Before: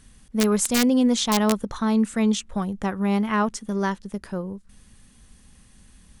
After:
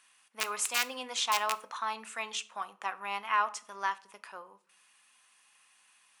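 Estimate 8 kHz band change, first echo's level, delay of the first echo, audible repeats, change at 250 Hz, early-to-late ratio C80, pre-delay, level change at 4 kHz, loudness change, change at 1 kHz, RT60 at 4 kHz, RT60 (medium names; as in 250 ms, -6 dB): -7.5 dB, no echo, no echo, no echo, -34.0 dB, 24.0 dB, 3 ms, -5.0 dB, -10.0 dB, -3.0 dB, 0.30 s, 0.50 s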